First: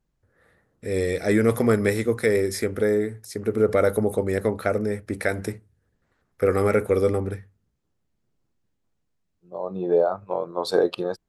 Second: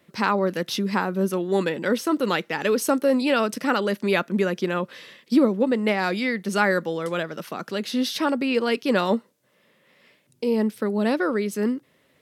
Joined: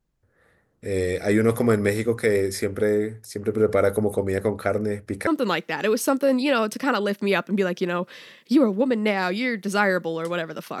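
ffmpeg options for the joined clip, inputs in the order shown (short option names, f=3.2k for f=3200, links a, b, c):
-filter_complex "[0:a]apad=whole_dur=10.8,atrim=end=10.8,atrim=end=5.272[a];[1:a]atrim=start=2.078:end=7.61[b];[a][b]acrossfade=d=0.004:c1=hsin:c2=hsin"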